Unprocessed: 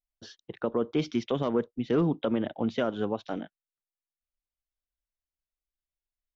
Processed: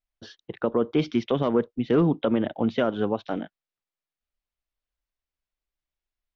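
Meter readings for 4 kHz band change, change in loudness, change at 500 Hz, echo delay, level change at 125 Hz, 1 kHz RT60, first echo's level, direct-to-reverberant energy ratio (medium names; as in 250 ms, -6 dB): +3.0 dB, +4.5 dB, +4.5 dB, no echo, +4.5 dB, no reverb, no echo, no reverb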